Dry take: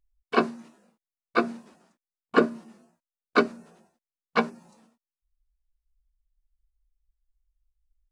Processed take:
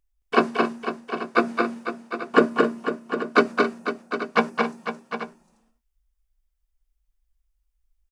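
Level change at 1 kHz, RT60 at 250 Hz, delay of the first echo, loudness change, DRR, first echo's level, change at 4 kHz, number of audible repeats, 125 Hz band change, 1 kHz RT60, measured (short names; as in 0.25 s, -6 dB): +6.0 dB, none, 0.22 s, +2.5 dB, none, -3.5 dB, +5.0 dB, 5, +4.0 dB, none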